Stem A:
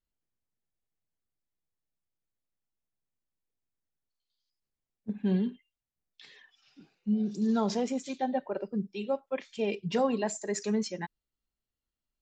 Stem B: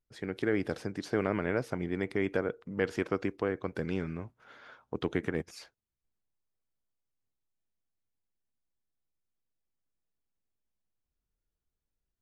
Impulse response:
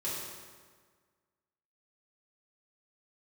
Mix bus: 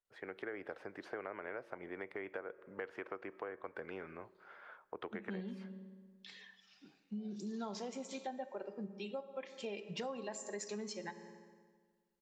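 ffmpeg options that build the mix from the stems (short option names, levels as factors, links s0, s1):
-filter_complex "[0:a]lowshelf=f=270:g=-9.5,adelay=50,volume=0.794,asplit=2[s0][s1];[s1]volume=0.188[s2];[1:a]acrossover=split=430 2500:gain=0.1 1 0.1[s3][s4][s5];[s3][s4][s5]amix=inputs=3:normalize=0,volume=0.891,asplit=2[s6][s7];[s7]volume=0.0631[s8];[2:a]atrim=start_sample=2205[s9];[s2][s8]amix=inputs=2:normalize=0[s10];[s10][s9]afir=irnorm=-1:irlink=0[s11];[s0][s6][s11]amix=inputs=3:normalize=0,acompressor=threshold=0.00891:ratio=4"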